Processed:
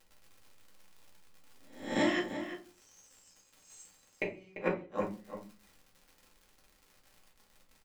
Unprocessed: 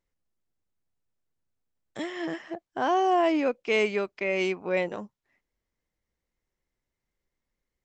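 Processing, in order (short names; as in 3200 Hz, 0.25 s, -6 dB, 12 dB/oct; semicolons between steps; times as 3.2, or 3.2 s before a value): spectral swells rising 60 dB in 0.51 s; 2.19–4.22 inverse Chebyshev high-pass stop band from 1600 Hz, stop band 80 dB; crackle 140/s -49 dBFS; flipped gate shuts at -19 dBFS, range -37 dB; outdoor echo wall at 59 m, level -10 dB; reverb RT60 0.35 s, pre-delay 4 ms, DRR -3 dB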